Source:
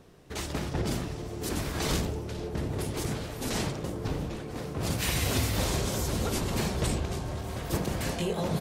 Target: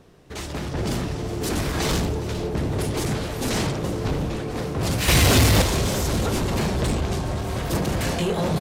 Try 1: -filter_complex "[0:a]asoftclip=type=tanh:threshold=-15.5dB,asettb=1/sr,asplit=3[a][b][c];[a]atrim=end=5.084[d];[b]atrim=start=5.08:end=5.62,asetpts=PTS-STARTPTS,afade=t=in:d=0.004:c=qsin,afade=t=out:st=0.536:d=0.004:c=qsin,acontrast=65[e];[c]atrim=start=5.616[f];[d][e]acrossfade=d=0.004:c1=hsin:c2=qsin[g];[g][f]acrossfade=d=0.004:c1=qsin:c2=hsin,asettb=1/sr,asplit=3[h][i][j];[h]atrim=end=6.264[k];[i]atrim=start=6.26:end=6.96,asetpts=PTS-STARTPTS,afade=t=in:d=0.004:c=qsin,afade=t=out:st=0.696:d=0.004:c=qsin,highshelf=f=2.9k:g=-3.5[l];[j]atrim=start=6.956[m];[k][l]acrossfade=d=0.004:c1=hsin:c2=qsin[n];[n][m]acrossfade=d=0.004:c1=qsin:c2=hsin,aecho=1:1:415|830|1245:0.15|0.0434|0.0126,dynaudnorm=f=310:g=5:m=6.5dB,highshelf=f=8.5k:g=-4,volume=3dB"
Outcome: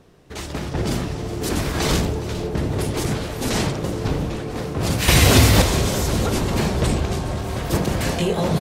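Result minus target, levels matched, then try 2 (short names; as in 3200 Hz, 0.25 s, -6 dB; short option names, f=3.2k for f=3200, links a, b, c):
soft clip: distortion -16 dB
-filter_complex "[0:a]asoftclip=type=tanh:threshold=-27dB,asettb=1/sr,asplit=3[a][b][c];[a]atrim=end=5.084[d];[b]atrim=start=5.08:end=5.62,asetpts=PTS-STARTPTS,afade=t=in:d=0.004:c=qsin,afade=t=out:st=0.536:d=0.004:c=qsin,acontrast=65[e];[c]atrim=start=5.616[f];[d][e]acrossfade=d=0.004:c1=hsin:c2=qsin[g];[g][f]acrossfade=d=0.004:c1=qsin:c2=hsin,asettb=1/sr,asplit=3[h][i][j];[h]atrim=end=6.264[k];[i]atrim=start=6.26:end=6.96,asetpts=PTS-STARTPTS,afade=t=in:d=0.004:c=qsin,afade=t=out:st=0.696:d=0.004:c=qsin,highshelf=f=2.9k:g=-3.5[l];[j]atrim=start=6.956[m];[k][l]acrossfade=d=0.004:c1=hsin:c2=qsin[n];[n][m]acrossfade=d=0.004:c1=qsin:c2=hsin,aecho=1:1:415|830|1245:0.15|0.0434|0.0126,dynaudnorm=f=310:g=5:m=6.5dB,highshelf=f=8.5k:g=-4,volume=3dB"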